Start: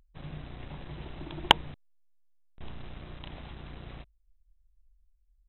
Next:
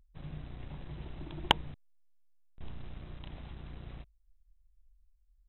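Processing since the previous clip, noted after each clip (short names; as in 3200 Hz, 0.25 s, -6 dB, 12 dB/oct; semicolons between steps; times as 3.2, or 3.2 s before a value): low shelf 240 Hz +6.5 dB; gain -6.5 dB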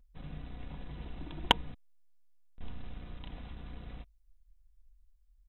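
comb 4.1 ms, depth 43%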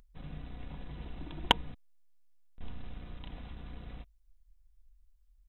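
upward compressor, threshold -60 dBFS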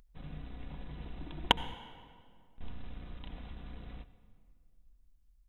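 reverb RT60 2.1 s, pre-delay 62 ms, DRR 13.5 dB; gain -1 dB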